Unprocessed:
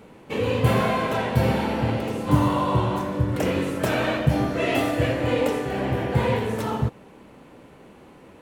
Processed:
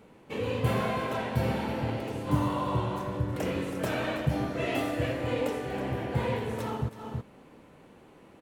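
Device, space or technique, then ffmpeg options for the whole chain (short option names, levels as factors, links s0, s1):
ducked delay: -filter_complex "[0:a]asplit=3[s0][s1][s2];[s1]adelay=323,volume=0.631[s3];[s2]apad=whole_len=385347[s4];[s3][s4]sidechaincompress=threshold=0.0282:ratio=10:attack=21:release=247[s5];[s0][s5]amix=inputs=2:normalize=0,volume=0.422"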